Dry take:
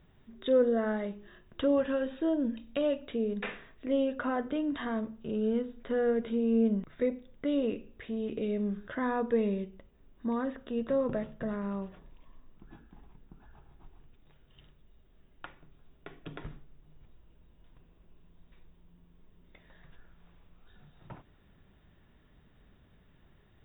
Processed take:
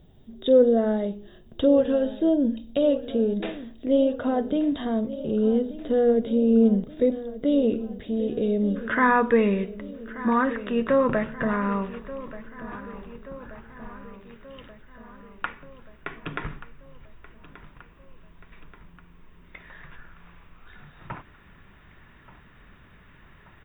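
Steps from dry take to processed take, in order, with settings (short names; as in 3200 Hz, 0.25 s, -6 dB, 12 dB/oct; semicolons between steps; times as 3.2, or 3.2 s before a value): band shelf 1600 Hz -10.5 dB, from 8.75 s +8.5 dB; feedback echo 1.181 s, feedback 59%, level -16 dB; gain +8 dB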